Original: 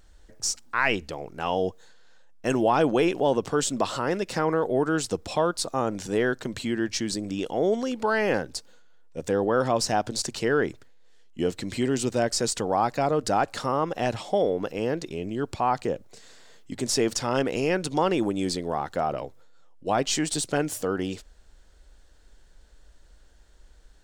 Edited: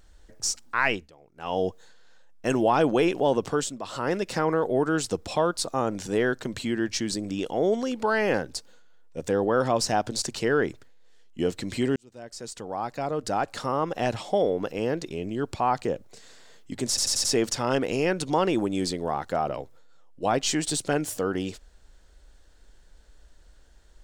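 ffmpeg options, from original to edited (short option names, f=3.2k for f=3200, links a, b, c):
-filter_complex "[0:a]asplit=9[a][b][c][d][e][f][g][h][i];[a]atrim=end=1.1,asetpts=PTS-STARTPTS,afade=t=out:st=0.86:d=0.24:silence=0.112202[j];[b]atrim=start=1.1:end=1.35,asetpts=PTS-STARTPTS,volume=-19dB[k];[c]atrim=start=1.35:end=3.8,asetpts=PTS-STARTPTS,afade=t=in:d=0.24:silence=0.112202,afade=t=out:st=2.17:d=0.28:silence=0.223872[l];[d]atrim=start=3.8:end=11.96,asetpts=PTS-STARTPTS,afade=t=in:d=0.28:silence=0.223872,afade=t=out:st=8.156:d=0.004:c=hsin[m];[e]atrim=start=11.96:end=16.972,asetpts=PTS-STARTPTS,afade=t=in:d=2.04[n];[f]atrim=start=16.878:end=16.972[o];[g]atrim=start=16.878:end=16.972[p];[h]atrim=start=16.878:end=16.972[q];[i]atrim=start=16.878[r];[j][k][l][m][n]concat=n=5:v=0:a=1[s];[s][o]acrossfade=d=0.004:c1=hsin:c2=hsin[t];[t][p]acrossfade=d=0.004:c1=hsin:c2=hsin[u];[u][q]acrossfade=d=0.004:c1=hsin:c2=hsin[v];[v][r]acrossfade=d=0.004:c1=hsin:c2=hsin"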